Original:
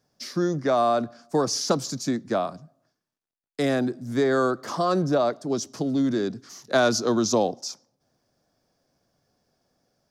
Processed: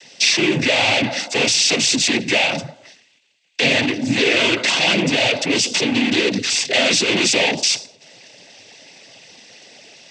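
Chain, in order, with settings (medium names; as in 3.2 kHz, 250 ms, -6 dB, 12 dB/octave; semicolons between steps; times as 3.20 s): overdrive pedal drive 39 dB, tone 1.3 kHz, clips at -8.5 dBFS; noise-vocoded speech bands 16; resonant high shelf 1.8 kHz +12.5 dB, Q 3; trim -3 dB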